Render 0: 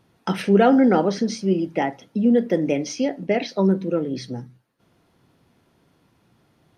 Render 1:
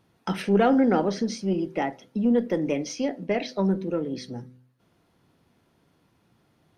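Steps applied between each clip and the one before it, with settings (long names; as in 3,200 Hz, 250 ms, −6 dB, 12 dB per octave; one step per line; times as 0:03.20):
one-sided soft clipper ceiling −5.5 dBFS
hum removal 126.6 Hz, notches 5
level −3.5 dB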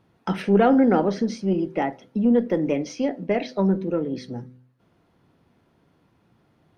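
high-shelf EQ 3,800 Hz −10 dB
level +3 dB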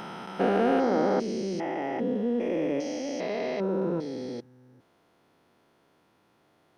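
spectrum averaged block by block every 400 ms
bass and treble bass −13 dB, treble +3 dB
level +2.5 dB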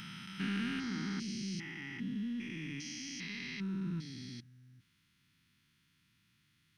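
Chebyshev band-stop filter 150–2,300 Hz, order 2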